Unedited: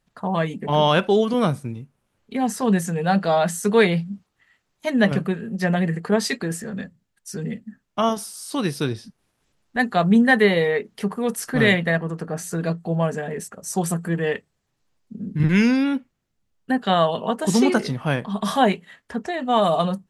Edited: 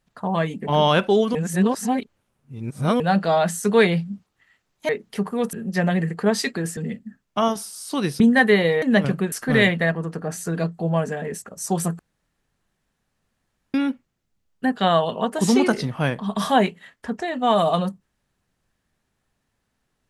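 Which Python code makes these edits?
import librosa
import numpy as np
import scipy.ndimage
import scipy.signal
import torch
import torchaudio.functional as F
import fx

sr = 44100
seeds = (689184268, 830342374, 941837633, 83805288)

y = fx.edit(x, sr, fx.reverse_span(start_s=1.35, length_s=1.65),
    fx.swap(start_s=4.89, length_s=0.5, other_s=10.74, other_length_s=0.64),
    fx.cut(start_s=6.63, length_s=0.75),
    fx.cut(start_s=8.81, length_s=1.31),
    fx.room_tone_fill(start_s=14.05, length_s=1.75), tone=tone)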